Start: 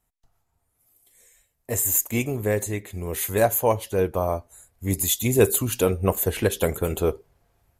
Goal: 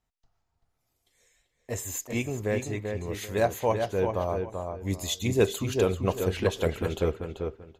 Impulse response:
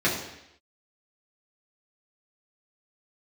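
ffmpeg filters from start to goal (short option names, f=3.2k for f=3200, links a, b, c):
-filter_complex "[0:a]highshelf=f=7.5k:t=q:w=1.5:g=-12.5,asplit=2[a][b];[b]adelay=388,lowpass=f=2.8k:p=1,volume=-5dB,asplit=2[c][d];[d]adelay=388,lowpass=f=2.8k:p=1,volume=0.25,asplit=2[e][f];[f]adelay=388,lowpass=f=2.8k:p=1,volume=0.25[g];[a][c][e][g]amix=inputs=4:normalize=0,volume=-5dB"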